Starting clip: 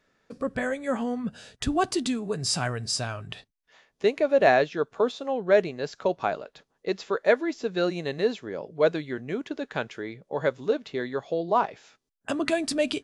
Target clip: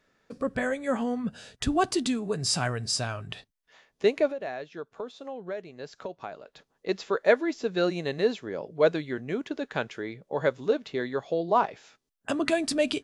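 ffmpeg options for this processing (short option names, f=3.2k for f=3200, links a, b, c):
-filter_complex "[0:a]asettb=1/sr,asplit=3[a][b][c];[a]atrim=end=4.274[d];[b]atrim=start=4.27:end=6.89,asetpts=PTS-STARTPTS,afade=t=in:d=0.004:c=qsin,afade=t=out:st=2.616:d=0.004:c=qsin,acompressor=threshold=-38dB:ratio=3[e];[c]atrim=start=6.886[f];[d][e]acrossfade=d=0.004:c1=hsin:c2=qsin[g];[g][f]acrossfade=d=0.004:c1=qsin:c2=hsin"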